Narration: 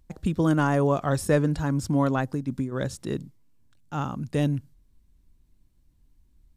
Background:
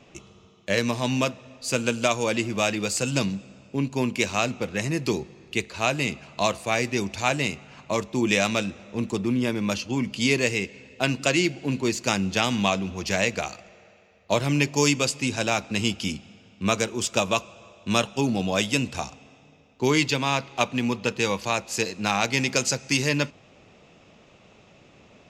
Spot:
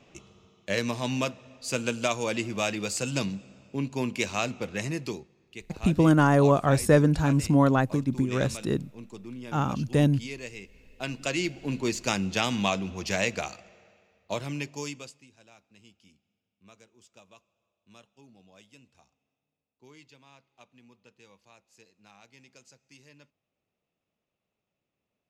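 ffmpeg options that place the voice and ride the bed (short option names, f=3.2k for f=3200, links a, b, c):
-filter_complex "[0:a]adelay=5600,volume=2.5dB[a];[1:a]volume=8.5dB,afade=t=out:st=4.89:d=0.39:silence=0.251189,afade=t=in:st=10.67:d=1.2:silence=0.223872,afade=t=out:st=13.44:d=1.83:silence=0.0375837[b];[a][b]amix=inputs=2:normalize=0"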